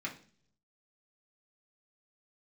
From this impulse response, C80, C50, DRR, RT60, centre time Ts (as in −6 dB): 17.0 dB, 11.5 dB, −3.5 dB, 0.50 s, 14 ms